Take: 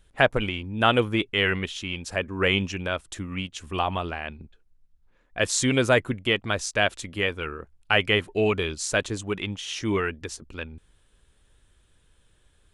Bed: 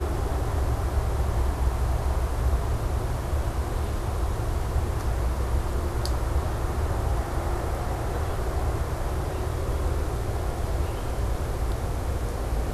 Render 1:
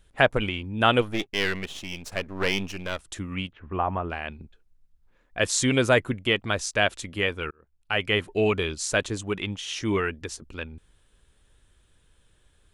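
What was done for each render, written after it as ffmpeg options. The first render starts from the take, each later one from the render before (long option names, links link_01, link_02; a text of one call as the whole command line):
ffmpeg -i in.wav -filter_complex "[0:a]asplit=3[link_01][link_02][link_03];[link_01]afade=type=out:start_time=1:duration=0.02[link_04];[link_02]aeval=exprs='if(lt(val(0),0),0.251*val(0),val(0))':channel_layout=same,afade=type=in:start_time=1:duration=0.02,afade=type=out:start_time=2.99:duration=0.02[link_05];[link_03]afade=type=in:start_time=2.99:duration=0.02[link_06];[link_04][link_05][link_06]amix=inputs=3:normalize=0,asplit=3[link_07][link_08][link_09];[link_07]afade=type=out:start_time=3.51:duration=0.02[link_10];[link_08]lowpass=frequency=1800:width=0.5412,lowpass=frequency=1800:width=1.3066,afade=type=in:start_time=3.51:duration=0.02,afade=type=out:start_time=4.09:duration=0.02[link_11];[link_09]afade=type=in:start_time=4.09:duration=0.02[link_12];[link_10][link_11][link_12]amix=inputs=3:normalize=0,asplit=2[link_13][link_14];[link_13]atrim=end=7.51,asetpts=PTS-STARTPTS,afade=type=out:start_time=7.506:duration=0.004:curve=hsin[link_15];[link_14]atrim=start=7.51,asetpts=PTS-STARTPTS,afade=type=in:duration=0.78[link_16];[link_15][link_16]concat=n=2:v=0:a=1" out.wav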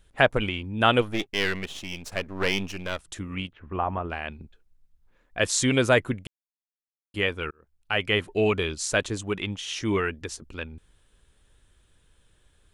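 ffmpeg -i in.wav -filter_complex "[0:a]asettb=1/sr,asplit=3[link_01][link_02][link_03];[link_01]atrim=end=2.994[link_04];[link_02]atrim=start=2.99:end=4.12,asetpts=PTS-STARTPTS,afade=type=in:duration=0.004:curve=qsin,afade=type=out:start_time=1.126:duration=0.004:curve=qsin,tremolo=f=150:d=0.261[link_05];[link_03]atrim=start=4.116[link_06];[link_04][link_05]acrossfade=duration=0.004:curve1=hsin:curve2=qsin[link_07];[link_07][link_06]acrossfade=duration=0.004:curve1=qsin:curve2=hsin,asplit=3[link_08][link_09][link_10];[link_08]atrim=end=6.27,asetpts=PTS-STARTPTS,afade=type=out:start_time=6.266:duration=0.004:curve=hsin[link_11];[link_09]atrim=start=6.27:end=7.14,asetpts=PTS-STARTPTS,volume=0[link_12];[link_10]atrim=start=7.14,asetpts=PTS-STARTPTS,afade=type=in:duration=0.004:curve=hsin[link_13];[link_11][link_12][link_13]concat=n=3:v=0:a=1" out.wav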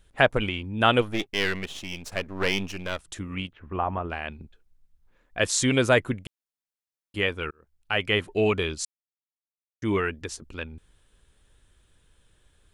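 ffmpeg -i in.wav -filter_complex "[0:a]asplit=3[link_01][link_02][link_03];[link_01]atrim=end=8.85,asetpts=PTS-STARTPTS,afade=type=out:start_time=8.846:duration=0.004:curve=hsin[link_04];[link_02]atrim=start=8.85:end=9.82,asetpts=PTS-STARTPTS,volume=0[link_05];[link_03]atrim=start=9.82,asetpts=PTS-STARTPTS,afade=type=in:duration=0.004:curve=hsin[link_06];[link_04][link_05][link_06]concat=n=3:v=0:a=1" out.wav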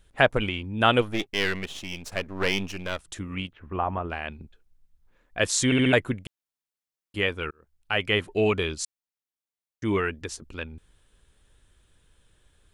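ffmpeg -i in.wav -filter_complex "[0:a]asplit=5[link_01][link_02][link_03][link_04][link_05];[link_01]atrim=end=5.722[link_06];[link_02]atrim=start=5.648:end=5.722[link_07];[link_03]atrim=start=5.648:end=5.722[link_08];[link_04]atrim=start=5.648:end=5.722[link_09];[link_05]atrim=start=5.928[link_10];[link_06][link_07]acrossfade=duration=0.004:curve1=hsin:curve2=hsin[link_11];[link_11][link_08]acrossfade=duration=0.004:curve1=hsin:curve2=hsin[link_12];[link_12][link_09]acrossfade=duration=0.004:curve1=hsin:curve2=hsin[link_13];[link_13][link_10]acrossfade=duration=0.004:curve1=hsin:curve2=hsin" out.wav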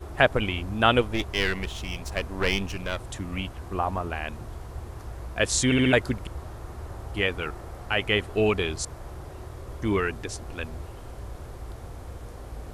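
ffmpeg -i in.wav -i bed.wav -filter_complex "[1:a]volume=-11.5dB[link_01];[0:a][link_01]amix=inputs=2:normalize=0" out.wav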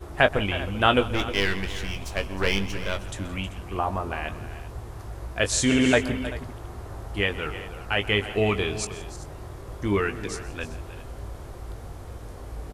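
ffmpeg -i in.wav -filter_complex "[0:a]asplit=2[link_01][link_02];[link_02]adelay=20,volume=-9dB[link_03];[link_01][link_03]amix=inputs=2:normalize=0,asplit=2[link_04][link_05];[link_05]aecho=0:1:128|169|314|388:0.112|0.1|0.188|0.133[link_06];[link_04][link_06]amix=inputs=2:normalize=0" out.wav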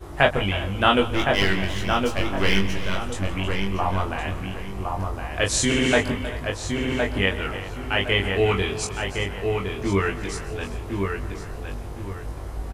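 ffmpeg -i in.wav -filter_complex "[0:a]asplit=2[link_01][link_02];[link_02]adelay=21,volume=-2dB[link_03];[link_01][link_03]amix=inputs=2:normalize=0,asplit=2[link_04][link_05];[link_05]adelay=1063,lowpass=frequency=2500:poles=1,volume=-4dB,asplit=2[link_06][link_07];[link_07]adelay=1063,lowpass=frequency=2500:poles=1,volume=0.3,asplit=2[link_08][link_09];[link_09]adelay=1063,lowpass=frequency=2500:poles=1,volume=0.3,asplit=2[link_10][link_11];[link_11]adelay=1063,lowpass=frequency=2500:poles=1,volume=0.3[link_12];[link_04][link_06][link_08][link_10][link_12]amix=inputs=5:normalize=0" out.wav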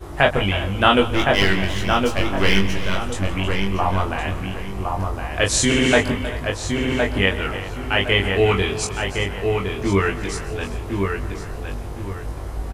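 ffmpeg -i in.wav -af "volume=3.5dB,alimiter=limit=-2dB:level=0:latency=1" out.wav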